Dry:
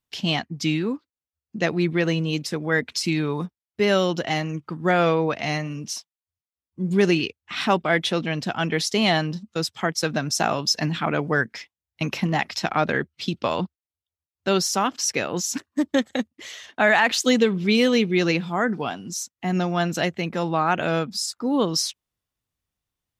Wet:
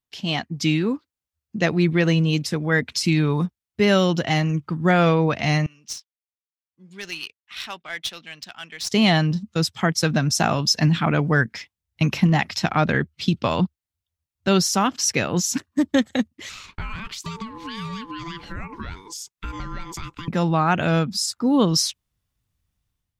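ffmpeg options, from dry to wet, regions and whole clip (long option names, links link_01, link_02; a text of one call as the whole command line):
ffmpeg -i in.wav -filter_complex "[0:a]asettb=1/sr,asplit=3[link_01][link_02][link_03];[link_01]atrim=end=5.664[link_04];[link_02]atrim=start=5.66:end=8.9,asetpts=PTS-STARTPTS,afade=type=in:duration=0.004:curve=qsin,afade=type=out:start_time=3.236:duration=0.004:curve=qsin,aderivative,adynamicsmooth=sensitivity=6:basefreq=3400[link_05];[link_03]atrim=start=8.896[link_06];[link_04][link_05]acrossfade=duration=0.004:curve1=hsin:curve2=qsin[link_07];[link_07][link_06]acrossfade=duration=0.004:curve1=qsin:curve2=hsin,asettb=1/sr,asplit=3[link_08][link_09][link_10];[link_08]atrim=end=16.494[link_11];[link_09]atrim=start=16.49:end=20.28,asetpts=PTS-STARTPTS,afade=type=in:duration=0.004:curve=qsin,afade=type=out:start_time=3.786:duration=0.004:curve=qsin,highpass=frequency=300:width=0.5412,highpass=frequency=300:width=1.3066,acompressor=threshold=-31dB:ratio=16:attack=3.2:release=140:knee=1:detection=peak,aeval=exprs='val(0)*sin(2*PI*670*n/s)':channel_layout=same[link_12];[link_10]atrim=start=20.276[link_13];[link_11][link_12]acrossfade=duration=0.004:curve1=hsin:curve2=qsin[link_14];[link_14][link_13]acrossfade=duration=0.004:curve1=qsin:curve2=hsin,asubboost=boost=2.5:cutoff=220,dynaudnorm=framelen=140:gausssize=5:maxgain=8.5dB,volume=-4.5dB" out.wav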